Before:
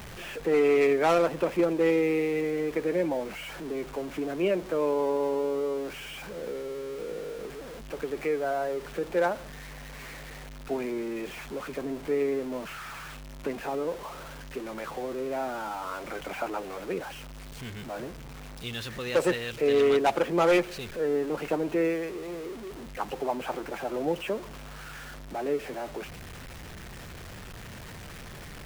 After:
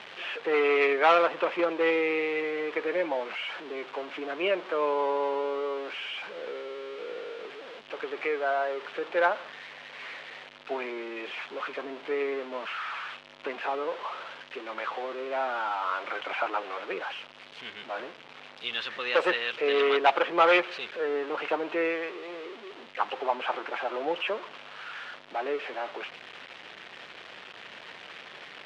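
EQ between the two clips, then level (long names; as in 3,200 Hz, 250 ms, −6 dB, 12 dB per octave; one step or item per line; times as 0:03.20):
high-pass filter 450 Hz 12 dB per octave
dynamic equaliser 1,200 Hz, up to +6 dB, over −47 dBFS, Q 1.2
low-pass with resonance 3,200 Hz, resonance Q 1.9
0.0 dB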